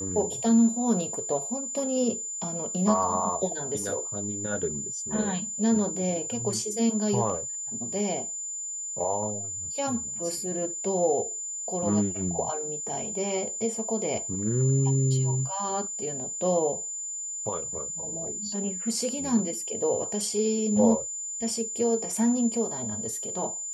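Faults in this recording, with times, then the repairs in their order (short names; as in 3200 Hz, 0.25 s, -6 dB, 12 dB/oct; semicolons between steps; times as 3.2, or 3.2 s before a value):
tone 7100 Hz -32 dBFS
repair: notch 7100 Hz, Q 30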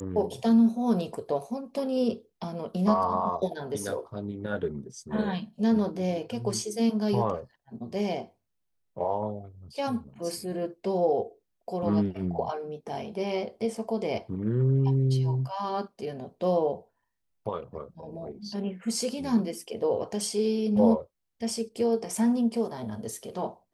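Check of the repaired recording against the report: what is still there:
none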